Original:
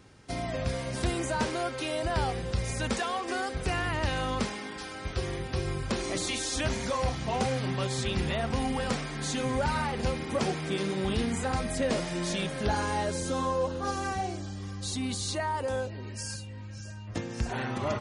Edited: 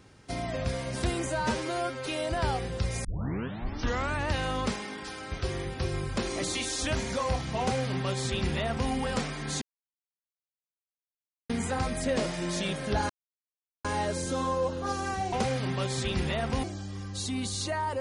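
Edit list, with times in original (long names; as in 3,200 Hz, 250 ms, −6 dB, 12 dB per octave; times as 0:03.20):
0:01.27–0:01.80: time-stretch 1.5×
0:02.78: tape start 1.27 s
0:07.33–0:08.64: duplicate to 0:14.31
0:09.35–0:11.23: silence
0:12.83: splice in silence 0.75 s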